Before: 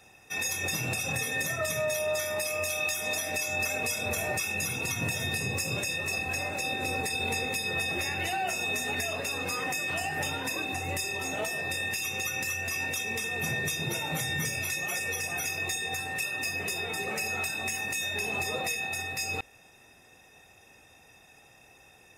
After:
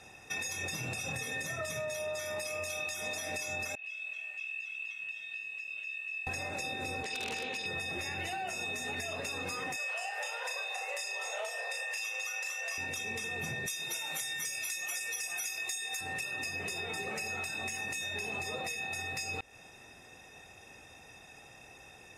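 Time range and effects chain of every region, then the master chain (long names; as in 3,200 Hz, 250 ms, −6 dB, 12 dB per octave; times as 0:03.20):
0:03.75–0:06.27: resonant band-pass 2,800 Hz, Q 13 + high-frequency loss of the air 67 metres + feedback echo at a low word length 94 ms, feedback 35%, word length 9 bits, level −14.5 dB
0:07.03–0:07.66: three-way crossover with the lows and the highs turned down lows −13 dB, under 190 Hz, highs −16 dB, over 7,400 Hz + wrap-around overflow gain 22.5 dB + highs frequency-modulated by the lows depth 0.12 ms
0:09.76–0:12.78: Butterworth high-pass 470 Hz 72 dB per octave + high-shelf EQ 12,000 Hz −7 dB + double-tracking delay 37 ms −5.5 dB
0:13.66–0:16.01: high-pass filter 1,100 Hz 6 dB per octave + high-shelf EQ 5,400 Hz +10.5 dB
whole clip: low-pass filter 10,000 Hz 12 dB per octave; downward compressor, threshold −38 dBFS; level +3 dB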